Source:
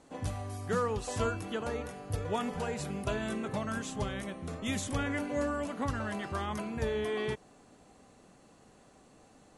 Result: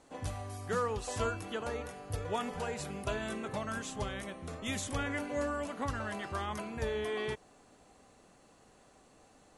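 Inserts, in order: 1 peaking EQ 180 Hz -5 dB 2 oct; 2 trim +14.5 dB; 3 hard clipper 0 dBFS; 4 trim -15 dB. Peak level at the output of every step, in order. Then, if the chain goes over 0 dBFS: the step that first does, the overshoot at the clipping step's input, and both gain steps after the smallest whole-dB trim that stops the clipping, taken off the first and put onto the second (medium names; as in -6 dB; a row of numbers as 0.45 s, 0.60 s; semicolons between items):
-20.5 dBFS, -6.0 dBFS, -6.0 dBFS, -21.0 dBFS; nothing clips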